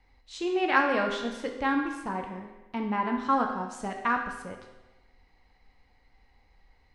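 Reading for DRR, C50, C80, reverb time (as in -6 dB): 2.5 dB, 5.5 dB, 7.5 dB, 1.1 s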